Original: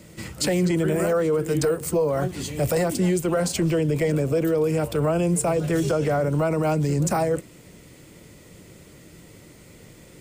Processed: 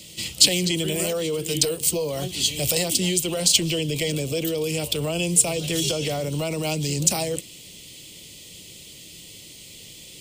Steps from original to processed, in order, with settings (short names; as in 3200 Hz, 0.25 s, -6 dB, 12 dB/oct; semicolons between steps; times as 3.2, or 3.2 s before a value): resonant high shelf 2200 Hz +13.5 dB, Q 3; notch 3600 Hz, Q 27; gain -4 dB